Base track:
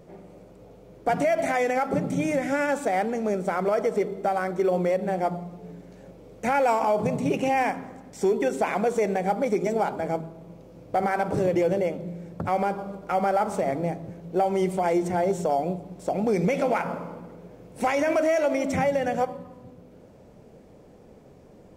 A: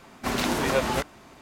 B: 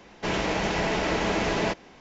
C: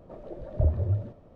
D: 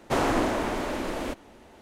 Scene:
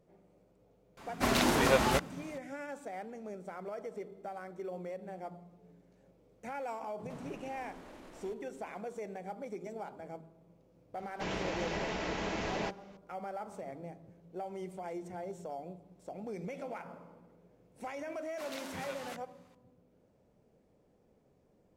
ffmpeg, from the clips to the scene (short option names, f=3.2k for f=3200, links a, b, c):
-filter_complex "[1:a]asplit=2[a][b];[0:a]volume=-18dB[c];[4:a]acompressor=threshold=-32dB:ratio=10:attack=1.1:release=137:knee=1:detection=peak[d];[b]highpass=f=920:p=1[e];[a]atrim=end=1.41,asetpts=PTS-STARTPTS,volume=-2dB,afade=t=in:d=0.004:c=hsin,afade=t=out:st=1.406:d=0.004:c=hsin,adelay=970[f];[d]atrim=end=1.81,asetpts=PTS-STARTPTS,volume=-15dB,afade=t=in:d=0.004:c=hsin,afade=t=out:st=1.806:d=0.004:c=hsin,adelay=7000[g];[2:a]atrim=end=2,asetpts=PTS-STARTPTS,volume=-10.5dB,afade=t=in:d=0.004:c=hsin,afade=t=out:st=1.996:d=0.004:c=hsin,adelay=10970[h];[e]atrim=end=1.41,asetpts=PTS-STARTPTS,volume=-16dB,afade=t=in:d=0.004:c=hsin,afade=t=out:st=1.406:d=0.004:c=hsin,adelay=18140[i];[c][f][g][h][i]amix=inputs=5:normalize=0"